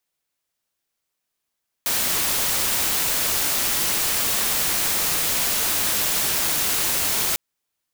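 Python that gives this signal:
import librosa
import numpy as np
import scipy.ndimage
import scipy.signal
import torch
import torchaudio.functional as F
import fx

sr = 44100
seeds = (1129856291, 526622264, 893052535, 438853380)

y = fx.noise_colour(sr, seeds[0], length_s=5.5, colour='white', level_db=-22.0)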